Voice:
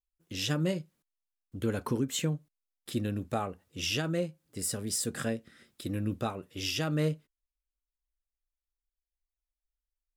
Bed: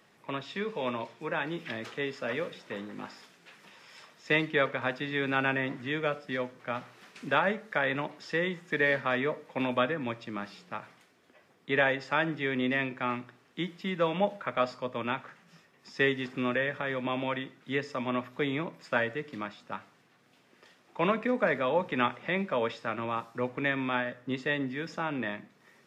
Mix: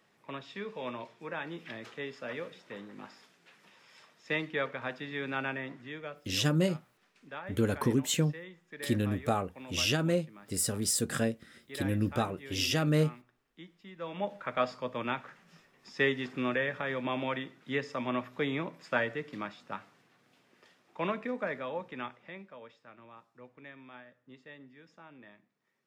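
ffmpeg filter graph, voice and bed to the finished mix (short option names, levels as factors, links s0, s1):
-filter_complex "[0:a]adelay=5950,volume=1.33[s0];[1:a]volume=2.82,afade=t=out:st=5.37:d=0.99:silence=0.298538,afade=t=in:st=13.96:d=0.62:silence=0.177828,afade=t=out:st=19.96:d=2.61:silence=0.112202[s1];[s0][s1]amix=inputs=2:normalize=0"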